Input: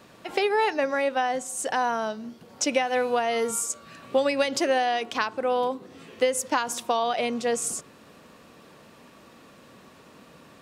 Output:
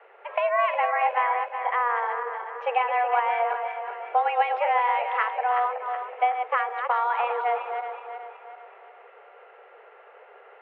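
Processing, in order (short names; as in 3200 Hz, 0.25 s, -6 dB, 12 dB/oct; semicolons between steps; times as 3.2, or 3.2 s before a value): regenerating reverse delay 0.186 s, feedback 67%, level -6.5 dB; mistuned SSB +240 Hz 160–2300 Hz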